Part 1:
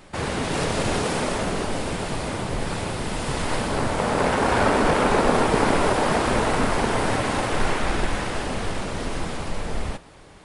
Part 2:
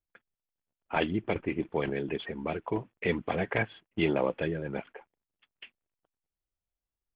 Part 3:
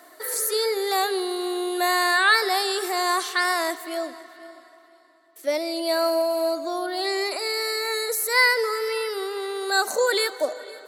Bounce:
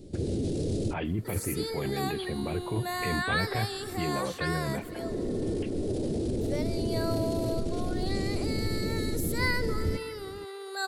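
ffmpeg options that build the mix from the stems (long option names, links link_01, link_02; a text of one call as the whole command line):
ffmpeg -i stem1.wav -i stem2.wav -i stem3.wav -filter_complex "[0:a]firequalizer=gain_entry='entry(130,0);entry(350,11);entry(1000,-26);entry(4000,-1)':delay=0.05:min_phase=1,volume=-6dB[link_01];[1:a]volume=0.5dB,asplit=2[link_02][link_03];[2:a]adelay=1050,volume=-11.5dB[link_04];[link_03]apad=whole_len=464971[link_05];[link_01][link_05]sidechaincompress=threshold=-55dB:ratio=8:attack=9.2:release=390[link_06];[link_06][link_02]amix=inputs=2:normalize=0,lowshelf=frequency=340:gain=5.5,alimiter=level_in=1dB:limit=-24dB:level=0:latency=1:release=13,volume=-1dB,volume=0dB[link_07];[link_04][link_07]amix=inputs=2:normalize=0,equalizer=frequency=94:width=1.4:gain=9" out.wav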